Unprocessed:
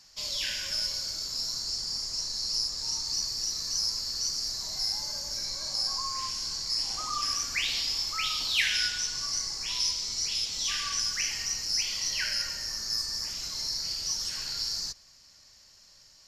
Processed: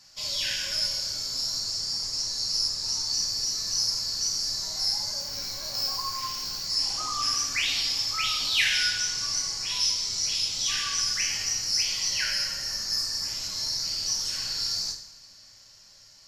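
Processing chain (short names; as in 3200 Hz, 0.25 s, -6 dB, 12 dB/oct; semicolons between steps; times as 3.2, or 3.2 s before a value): 5.2–6.64 median filter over 5 samples; two-slope reverb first 0.53 s, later 3.2 s, from -22 dB, DRR 0 dB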